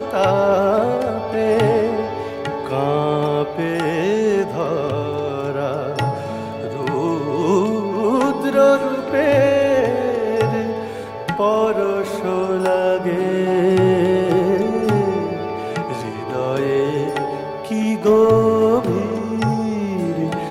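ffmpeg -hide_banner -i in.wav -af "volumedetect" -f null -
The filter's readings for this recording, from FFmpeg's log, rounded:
mean_volume: -18.2 dB
max_volume: -3.1 dB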